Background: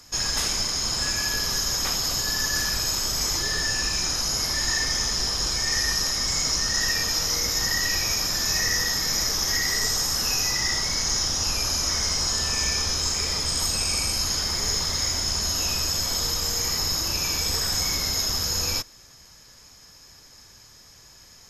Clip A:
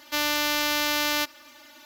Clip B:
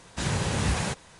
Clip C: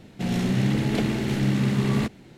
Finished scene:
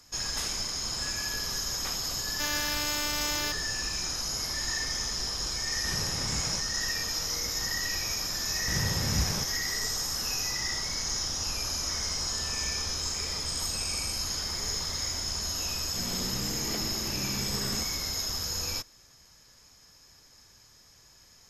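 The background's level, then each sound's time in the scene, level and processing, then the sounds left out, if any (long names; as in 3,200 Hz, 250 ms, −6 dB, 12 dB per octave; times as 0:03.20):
background −7 dB
0:02.27: mix in A −8.5 dB
0:05.67: mix in B −10 dB
0:08.50: mix in B −8.5 dB + low-shelf EQ 210 Hz +8 dB
0:15.76: mix in C −10 dB + low-shelf EQ 230 Hz −8.5 dB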